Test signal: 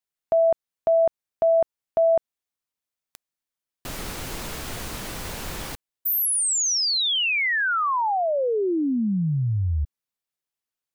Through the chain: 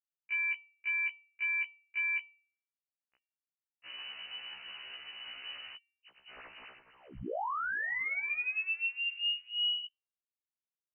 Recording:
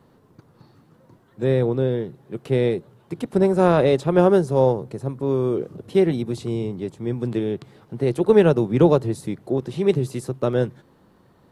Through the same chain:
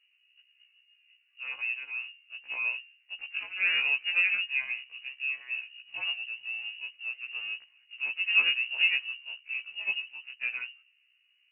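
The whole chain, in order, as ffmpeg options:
-af "aeval=exprs='if(lt(val(0),0),0.708*val(0),val(0))':c=same,bandreject=f=227.2:t=h:w=4,bandreject=f=454.4:t=h:w=4,bandreject=f=681.6:t=h:w=4,bandreject=f=908.8:t=h:w=4,bandreject=f=1.136k:t=h:w=4,adynamicsmooth=sensitivity=6:basefreq=810,lowpass=f=2.6k:t=q:w=0.5098,lowpass=f=2.6k:t=q:w=0.6013,lowpass=f=2.6k:t=q:w=0.9,lowpass=f=2.6k:t=q:w=2.563,afreqshift=-3000,afftfilt=real='re*1.73*eq(mod(b,3),0)':imag='im*1.73*eq(mod(b,3),0)':win_size=2048:overlap=0.75,volume=-8dB"

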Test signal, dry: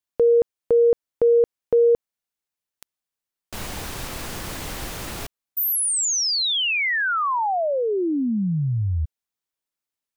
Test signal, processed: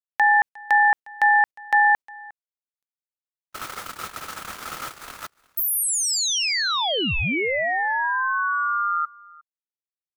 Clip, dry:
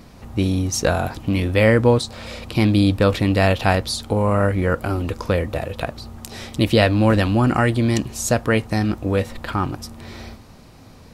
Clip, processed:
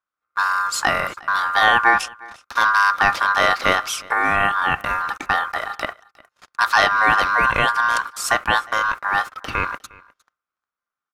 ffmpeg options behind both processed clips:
-af "aeval=exprs='val(0)*sin(2*PI*1300*n/s)':c=same,agate=range=-44dB:threshold=-33dB:ratio=16:release=76:detection=rms,aeval=exprs='0.708*(cos(1*acos(clip(val(0)/0.708,-1,1)))-cos(1*PI/2))+0.00562*(cos(2*acos(clip(val(0)/0.708,-1,1)))-cos(2*PI/2))+0.01*(cos(3*acos(clip(val(0)/0.708,-1,1)))-cos(3*PI/2))':c=same,aecho=1:1:357:0.0668,volume=2.5dB"

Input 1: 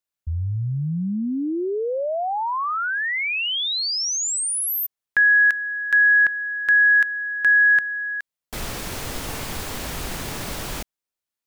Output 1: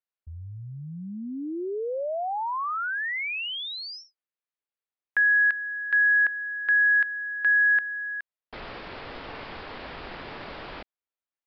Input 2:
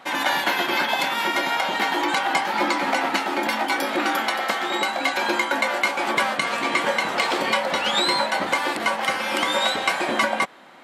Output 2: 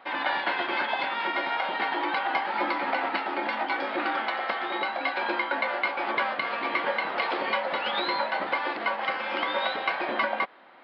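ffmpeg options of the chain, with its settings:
-af "bass=f=250:g=-10,treble=f=4k:g=-13,aresample=11025,aresample=44100,volume=-4.5dB"

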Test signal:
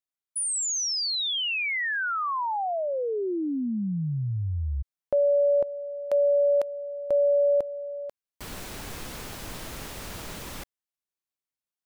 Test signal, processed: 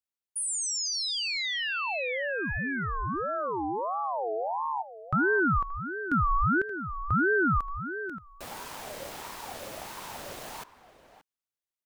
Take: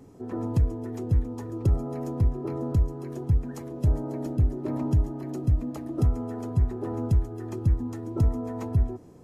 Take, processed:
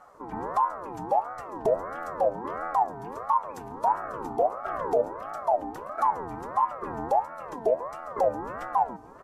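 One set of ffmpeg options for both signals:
-filter_complex "[0:a]asplit=2[a][b];[b]adelay=577.3,volume=-14dB,highshelf=f=4k:g=-13[c];[a][c]amix=inputs=2:normalize=0,aeval=exprs='val(0)*sin(2*PI*770*n/s+770*0.3/1.5*sin(2*PI*1.5*n/s))':c=same"

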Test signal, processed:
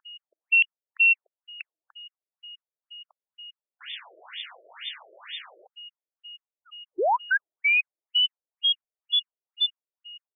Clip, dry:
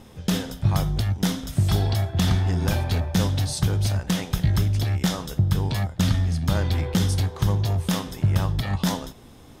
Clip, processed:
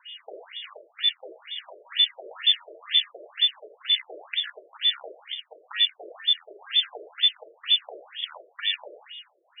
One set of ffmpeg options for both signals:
-af "aeval=exprs='val(0)+0.00631*sin(2*PI*730*n/s)':c=same,lowpass=f=3.1k:t=q:w=0.5098,lowpass=f=3.1k:t=q:w=0.6013,lowpass=f=3.1k:t=q:w=0.9,lowpass=f=3.1k:t=q:w=2.563,afreqshift=-3600,afftfilt=real='re*between(b*sr/1024,450*pow(2600/450,0.5+0.5*sin(2*PI*2.1*pts/sr))/1.41,450*pow(2600/450,0.5+0.5*sin(2*PI*2.1*pts/sr))*1.41)':imag='im*between(b*sr/1024,450*pow(2600/450,0.5+0.5*sin(2*PI*2.1*pts/sr))/1.41,450*pow(2600/450,0.5+0.5*sin(2*PI*2.1*pts/sr))*1.41)':win_size=1024:overlap=0.75,volume=5dB"

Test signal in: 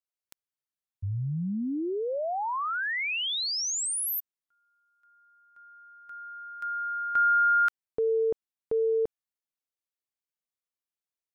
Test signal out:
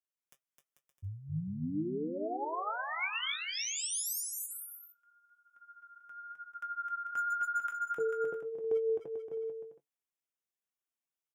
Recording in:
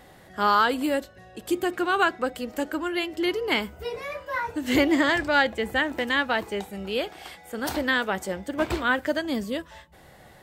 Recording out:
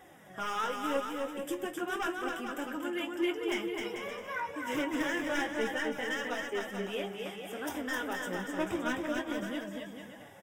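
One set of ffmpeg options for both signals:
-filter_complex "[0:a]highpass=100,acompressor=threshold=-38dB:ratio=1.5:attack=14:release=807:knee=6:detection=peak,flanger=delay=5.4:depth=8.8:regen=63:speed=0.32:shape=triangular,aeval=exprs='0.0398*(abs(mod(val(0)/0.0398+3,4)-2)-1)':c=same,flanger=delay=2.4:depth=5.2:regen=21:speed=0.92:shape=triangular,asuperstop=centerf=4300:order=4:qfactor=2.9,asplit=2[a][b];[b]adelay=20,volume=-11dB[c];[a][c]amix=inputs=2:normalize=0,asplit=2[d][e];[e]aecho=0:1:260|442|569.4|658.6|721:0.631|0.398|0.251|0.158|0.1[f];[d][f]amix=inputs=2:normalize=0,volume=3.5dB"

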